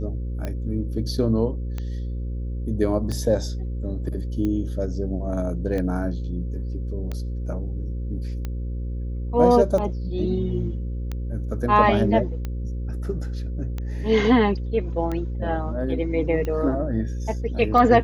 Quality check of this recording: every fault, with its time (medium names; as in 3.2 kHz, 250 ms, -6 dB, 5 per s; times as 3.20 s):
buzz 60 Hz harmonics 9 -28 dBFS
tick 45 rpm -17 dBFS